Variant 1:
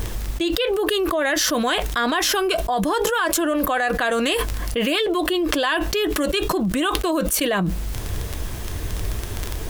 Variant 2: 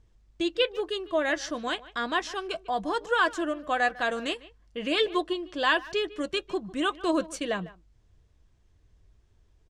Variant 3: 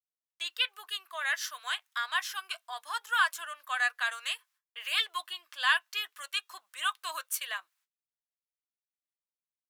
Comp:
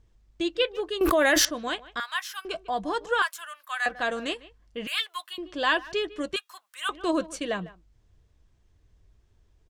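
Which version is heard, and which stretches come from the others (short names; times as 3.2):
2
1.01–1.45 from 1
2–2.45 from 3
3.22–3.86 from 3
4.87–5.38 from 3
6.36–6.89 from 3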